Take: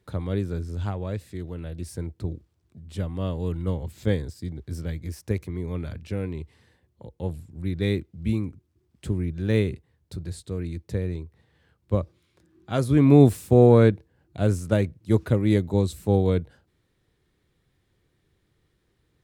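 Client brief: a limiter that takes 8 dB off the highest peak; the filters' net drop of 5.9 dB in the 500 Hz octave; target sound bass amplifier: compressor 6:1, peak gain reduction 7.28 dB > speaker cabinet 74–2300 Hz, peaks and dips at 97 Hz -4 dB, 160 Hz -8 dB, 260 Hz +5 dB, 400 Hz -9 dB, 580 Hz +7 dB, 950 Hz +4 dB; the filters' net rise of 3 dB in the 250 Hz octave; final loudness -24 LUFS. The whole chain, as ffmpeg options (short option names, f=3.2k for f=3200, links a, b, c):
-af "equalizer=f=250:t=o:g=4.5,equalizer=f=500:t=o:g=-7.5,alimiter=limit=-11.5dB:level=0:latency=1,acompressor=threshold=-22dB:ratio=6,highpass=f=74:w=0.5412,highpass=f=74:w=1.3066,equalizer=f=97:t=q:w=4:g=-4,equalizer=f=160:t=q:w=4:g=-8,equalizer=f=260:t=q:w=4:g=5,equalizer=f=400:t=q:w=4:g=-9,equalizer=f=580:t=q:w=4:g=7,equalizer=f=950:t=q:w=4:g=4,lowpass=f=2.3k:w=0.5412,lowpass=f=2.3k:w=1.3066,volume=8.5dB"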